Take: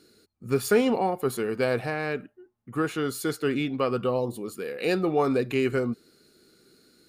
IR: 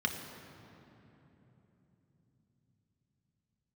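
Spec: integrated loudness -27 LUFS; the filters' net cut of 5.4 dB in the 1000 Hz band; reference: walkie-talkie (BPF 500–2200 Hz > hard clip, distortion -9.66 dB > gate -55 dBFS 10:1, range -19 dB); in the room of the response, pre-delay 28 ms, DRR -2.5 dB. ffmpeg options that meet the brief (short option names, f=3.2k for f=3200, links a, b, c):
-filter_complex "[0:a]equalizer=f=1k:t=o:g=-7,asplit=2[a][b];[1:a]atrim=start_sample=2205,adelay=28[c];[b][c]afir=irnorm=-1:irlink=0,volume=-4dB[d];[a][d]amix=inputs=2:normalize=0,highpass=500,lowpass=2.2k,asoftclip=type=hard:threshold=-26.5dB,agate=range=-19dB:threshold=-55dB:ratio=10,volume=5dB"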